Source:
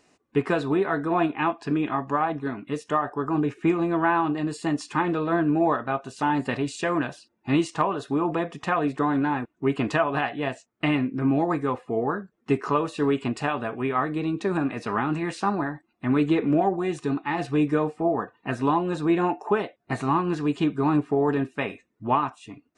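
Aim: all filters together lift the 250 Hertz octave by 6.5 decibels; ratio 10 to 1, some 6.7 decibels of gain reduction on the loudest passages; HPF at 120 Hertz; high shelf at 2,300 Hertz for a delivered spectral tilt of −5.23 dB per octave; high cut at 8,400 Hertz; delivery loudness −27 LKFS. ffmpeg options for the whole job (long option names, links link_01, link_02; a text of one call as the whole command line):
ffmpeg -i in.wav -af "highpass=120,lowpass=8400,equalizer=frequency=250:width_type=o:gain=8.5,highshelf=frequency=2300:gain=9,acompressor=threshold=-18dB:ratio=10,volume=-2.5dB" out.wav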